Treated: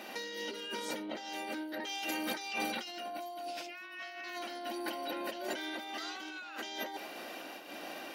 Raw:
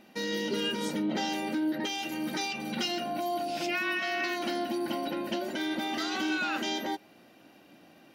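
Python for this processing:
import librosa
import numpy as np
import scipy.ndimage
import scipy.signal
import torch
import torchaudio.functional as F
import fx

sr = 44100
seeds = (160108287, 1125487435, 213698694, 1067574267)

y = scipy.signal.sosfilt(scipy.signal.butter(2, 450.0, 'highpass', fs=sr, output='sos'), x)
y = fx.over_compress(y, sr, threshold_db=-45.0, ratio=-1.0)
y = fx.am_noise(y, sr, seeds[0], hz=5.7, depth_pct=60)
y = y * librosa.db_to_amplitude(7.0)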